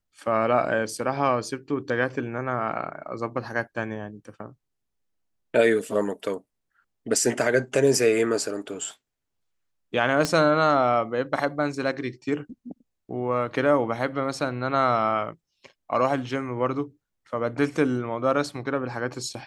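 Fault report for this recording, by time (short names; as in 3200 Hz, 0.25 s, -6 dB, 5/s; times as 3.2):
10.25 pop -9 dBFS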